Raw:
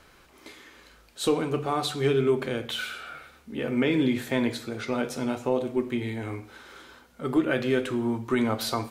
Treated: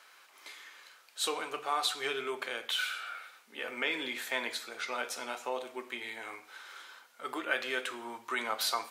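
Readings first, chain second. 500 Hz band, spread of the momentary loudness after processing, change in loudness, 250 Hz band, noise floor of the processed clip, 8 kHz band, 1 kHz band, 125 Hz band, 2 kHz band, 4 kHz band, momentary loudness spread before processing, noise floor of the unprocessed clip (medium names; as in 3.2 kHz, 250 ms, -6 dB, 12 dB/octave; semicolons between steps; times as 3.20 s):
-12.5 dB, 17 LU, -7.5 dB, -20.5 dB, -61 dBFS, 0.0 dB, -2.5 dB, under -30 dB, -0.5 dB, 0.0 dB, 15 LU, -56 dBFS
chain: high-pass 920 Hz 12 dB/octave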